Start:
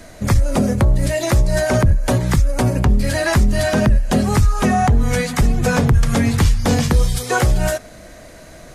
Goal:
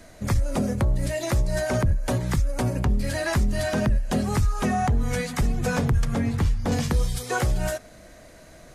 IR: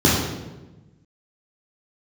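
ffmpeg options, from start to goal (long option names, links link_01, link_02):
-filter_complex "[0:a]asettb=1/sr,asplit=3[link_01][link_02][link_03];[link_01]atrim=end=6.054[link_04];[link_02]atrim=start=6.05:end=6.72,asetpts=PTS-STARTPTS,afade=type=in:duration=0.004:curve=qsin,afade=type=out:start_time=0.666:duration=0.004:curve=qsin,highshelf=frequency=2300:gain=-9[link_05];[link_03]atrim=start=6.716[link_06];[link_04][link_05]acrossfade=duration=0.004:curve1=hsin:curve2=qsin[link_07];[link_07][link_06]acrossfade=duration=0.004:curve1=qsin:curve2=hsin,volume=-8dB"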